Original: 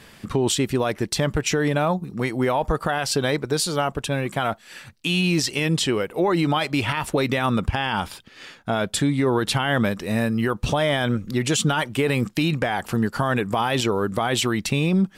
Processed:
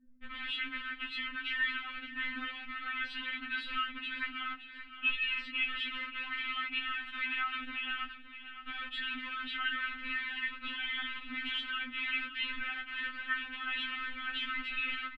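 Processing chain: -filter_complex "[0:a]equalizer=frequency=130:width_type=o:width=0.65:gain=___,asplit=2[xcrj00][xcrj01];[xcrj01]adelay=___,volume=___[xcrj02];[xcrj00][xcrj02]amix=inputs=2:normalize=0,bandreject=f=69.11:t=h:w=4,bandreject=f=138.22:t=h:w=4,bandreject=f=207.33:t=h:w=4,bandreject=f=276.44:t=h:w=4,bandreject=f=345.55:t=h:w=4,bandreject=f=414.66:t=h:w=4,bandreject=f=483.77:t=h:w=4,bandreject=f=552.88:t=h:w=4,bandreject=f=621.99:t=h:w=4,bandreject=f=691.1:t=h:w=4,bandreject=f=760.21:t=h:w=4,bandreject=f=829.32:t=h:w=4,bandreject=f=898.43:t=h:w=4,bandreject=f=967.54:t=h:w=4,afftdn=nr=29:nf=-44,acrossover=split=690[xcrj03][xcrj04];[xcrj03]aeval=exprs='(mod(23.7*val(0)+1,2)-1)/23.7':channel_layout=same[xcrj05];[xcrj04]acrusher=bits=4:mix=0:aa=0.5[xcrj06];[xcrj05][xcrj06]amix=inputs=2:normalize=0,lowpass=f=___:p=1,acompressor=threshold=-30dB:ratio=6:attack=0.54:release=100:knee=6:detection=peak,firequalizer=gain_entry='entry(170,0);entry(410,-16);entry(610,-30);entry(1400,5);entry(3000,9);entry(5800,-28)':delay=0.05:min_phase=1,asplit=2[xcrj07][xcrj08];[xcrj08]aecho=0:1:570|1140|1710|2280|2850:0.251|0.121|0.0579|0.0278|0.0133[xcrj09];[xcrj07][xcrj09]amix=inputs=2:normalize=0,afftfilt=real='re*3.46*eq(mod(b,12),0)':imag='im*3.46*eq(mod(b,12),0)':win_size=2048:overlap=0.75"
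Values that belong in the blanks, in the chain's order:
-10.5, 17, -4dB, 1400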